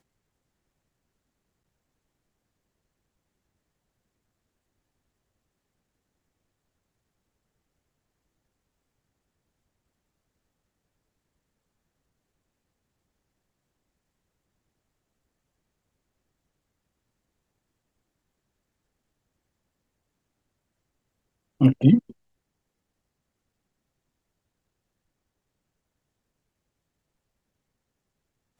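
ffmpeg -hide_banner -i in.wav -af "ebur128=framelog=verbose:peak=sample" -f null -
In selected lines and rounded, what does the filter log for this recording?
Integrated loudness:
  I:         -19.7 LUFS
  Threshold: -30.8 LUFS
Loudness range:
  LRA:         4.3 LU
  Threshold: -46.7 LUFS
  LRA low:   -30.2 LUFS
  LRA high:  -26.0 LUFS
Sample peak:
  Peak:       -3.7 dBFS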